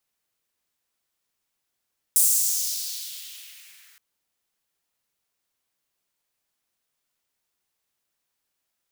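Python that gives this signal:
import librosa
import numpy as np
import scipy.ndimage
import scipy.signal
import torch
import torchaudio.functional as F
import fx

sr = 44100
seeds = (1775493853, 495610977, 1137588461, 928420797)

y = fx.riser_noise(sr, seeds[0], length_s=1.82, colour='white', kind='highpass', start_hz=8800.0, end_hz=1700.0, q=2.1, swell_db=-38.0, law='exponential')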